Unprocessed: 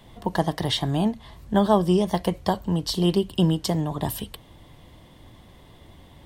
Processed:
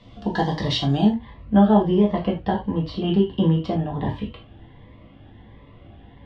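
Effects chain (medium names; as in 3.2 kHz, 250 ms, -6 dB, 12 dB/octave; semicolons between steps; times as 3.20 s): low-pass 5.3 kHz 24 dB/octave, from 1.07 s 2.8 kHz; gated-style reverb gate 110 ms falling, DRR -1.5 dB; Shepard-style phaser rising 1.4 Hz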